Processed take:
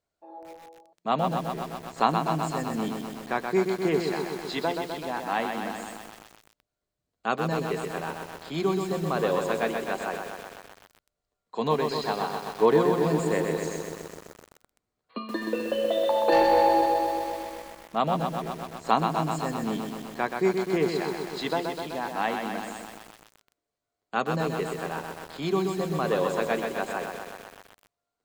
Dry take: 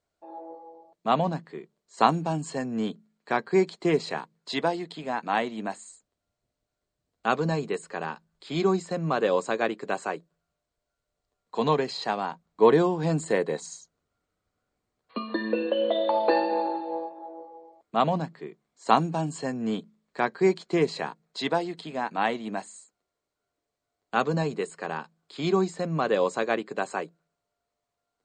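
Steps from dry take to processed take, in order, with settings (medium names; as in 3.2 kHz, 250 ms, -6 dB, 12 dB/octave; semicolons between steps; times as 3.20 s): 16.32–16.86 s: waveshaping leveller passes 2; bit-crushed delay 127 ms, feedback 80%, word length 7-bit, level -5 dB; trim -2.5 dB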